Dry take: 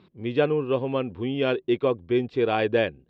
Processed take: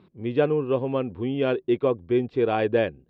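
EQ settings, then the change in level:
high-shelf EQ 2,200 Hz −8.5 dB
+1.0 dB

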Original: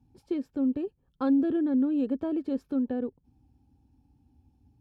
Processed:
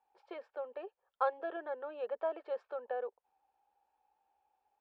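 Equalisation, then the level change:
inverse Chebyshev high-pass filter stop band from 290 Hz, stop band 40 dB
low-pass filter 1,900 Hz 12 dB per octave
+5.0 dB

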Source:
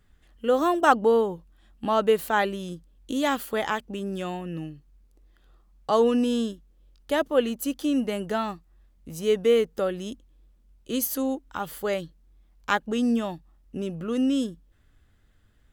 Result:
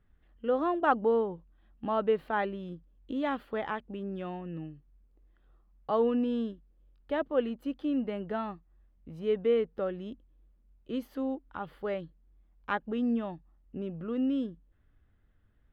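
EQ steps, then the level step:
high-frequency loss of the air 420 metres
−5.0 dB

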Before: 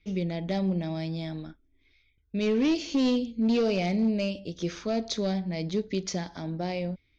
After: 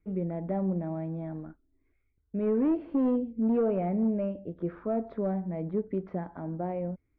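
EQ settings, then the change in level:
low-pass filter 1,400 Hz 24 dB per octave
high-frequency loss of the air 67 metres
low-shelf EQ 180 Hz −4.5 dB
0.0 dB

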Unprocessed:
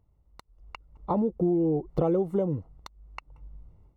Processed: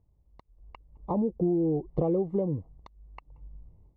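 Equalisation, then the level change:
Butterworth band-reject 1,400 Hz, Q 3.7
high-frequency loss of the air 140 metres
tilt shelving filter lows +5.5 dB, about 1,400 Hz
−6.0 dB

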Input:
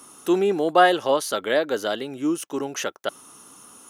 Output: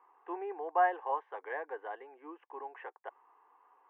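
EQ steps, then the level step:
high-pass filter 590 Hz 24 dB per octave
inverse Chebyshev low-pass filter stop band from 8,200 Hz, stop band 80 dB
phaser with its sweep stopped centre 900 Hz, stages 8
−5.0 dB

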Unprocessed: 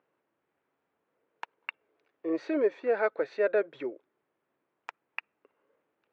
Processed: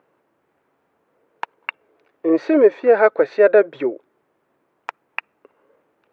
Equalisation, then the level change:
low-shelf EQ 330 Hz +6.5 dB
parametric band 840 Hz +5 dB 2.6 octaves
+8.0 dB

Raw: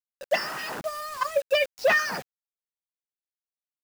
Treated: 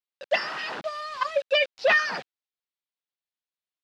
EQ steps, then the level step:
low-pass with resonance 3,800 Hz, resonance Q 1.6
low-shelf EQ 160 Hz −10.5 dB
0.0 dB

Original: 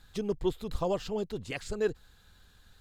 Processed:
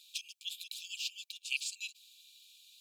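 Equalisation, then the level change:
linear-phase brick-wall high-pass 2,300 Hz
+7.5 dB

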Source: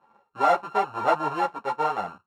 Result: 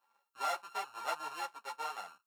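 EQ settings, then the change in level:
first difference
+2.0 dB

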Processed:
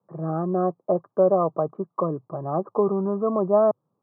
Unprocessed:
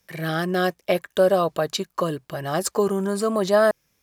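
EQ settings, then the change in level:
Chebyshev band-pass filter 110–1,200 Hz, order 5
0.0 dB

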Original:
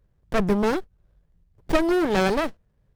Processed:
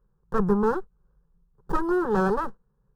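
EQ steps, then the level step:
high shelf with overshoot 2,200 Hz −11.5 dB, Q 1.5
phaser with its sweep stopped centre 430 Hz, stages 8
0.0 dB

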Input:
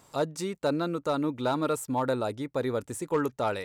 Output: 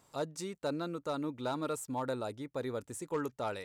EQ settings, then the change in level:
dynamic equaliser 6,800 Hz, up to +4 dB, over −49 dBFS, Q 0.89
−8.0 dB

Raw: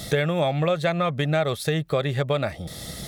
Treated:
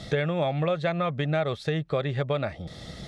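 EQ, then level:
high-frequency loss of the air 120 metres
−3.0 dB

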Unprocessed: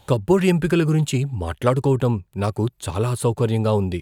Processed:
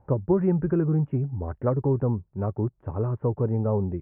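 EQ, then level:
Gaussian smoothing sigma 6.4 samples
high-frequency loss of the air 350 metres
−4.0 dB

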